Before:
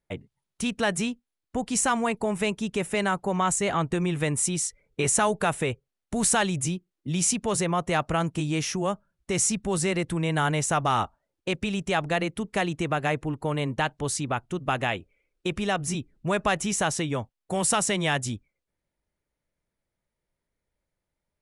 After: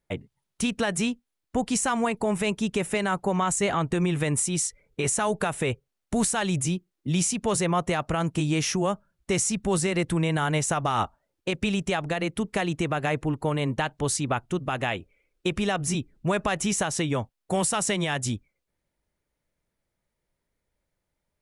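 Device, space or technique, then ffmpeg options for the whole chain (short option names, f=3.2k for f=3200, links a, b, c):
stacked limiters: -af "alimiter=limit=-13.5dB:level=0:latency=1:release=231,alimiter=limit=-18dB:level=0:latency=1:release=93,volume=3dB"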